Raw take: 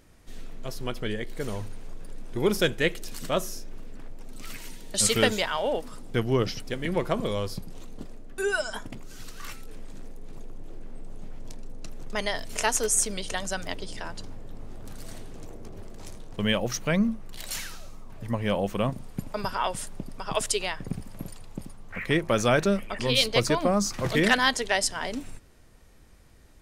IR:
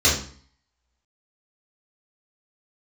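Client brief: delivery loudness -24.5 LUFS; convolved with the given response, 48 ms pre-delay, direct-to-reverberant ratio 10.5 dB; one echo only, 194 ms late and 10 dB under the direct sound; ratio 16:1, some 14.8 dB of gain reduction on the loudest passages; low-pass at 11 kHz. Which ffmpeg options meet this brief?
-filter_complex "[0:a]lowpass=11000,acompressor=threshold=0.0282:ratio=16,aecho=1:1:194:0.316,asplit=2[s0][s1];[1:a]atrim=start_sample=2205,adelay=48[s2];[s1][s2]afir=irnorm=-1:irlink=0,volume=0.0355[s3];[s0][s3]amix=inputs=2:normalize=0,volume=4.47"

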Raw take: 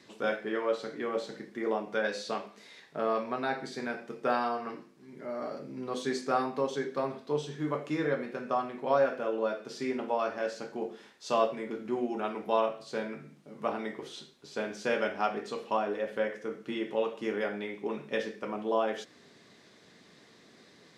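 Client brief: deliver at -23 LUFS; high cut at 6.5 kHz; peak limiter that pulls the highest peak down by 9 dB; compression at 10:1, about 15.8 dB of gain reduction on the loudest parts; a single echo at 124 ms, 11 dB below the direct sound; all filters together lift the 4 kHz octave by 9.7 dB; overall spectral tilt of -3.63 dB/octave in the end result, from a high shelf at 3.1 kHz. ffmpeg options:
-af "lowpass=6500,highshelf=f=3100:g=5.5,equalizer=f=4000:t=o:g=8.5,acompressor=threshold=0.0141:ratio=10,alimiter=level_in=2.24:limit=0.0631:level=0:latency=1,volume=0.447,aecho=1:1:124:0.282,volume=9.44"

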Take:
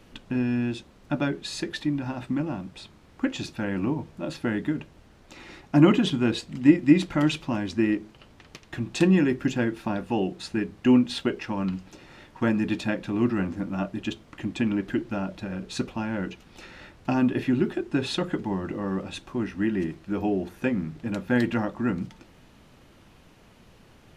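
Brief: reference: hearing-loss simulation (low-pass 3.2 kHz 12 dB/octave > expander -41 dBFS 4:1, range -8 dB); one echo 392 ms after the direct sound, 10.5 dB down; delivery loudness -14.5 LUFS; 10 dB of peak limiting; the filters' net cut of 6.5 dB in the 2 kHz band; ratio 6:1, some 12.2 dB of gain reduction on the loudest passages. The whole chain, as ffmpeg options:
-af "equalizer=f=2000:t=o:g=-8,acompressor=threshold=0.0631:ratio=6,alimiter=level_in=1.19:limit=0.0631:level=0:latency=1,volume=0.841,lowpass=3200,aecho=1:1:392:0.299,agate=range=0.398:threshold=0.00891:ratio=4,volume=10.6"

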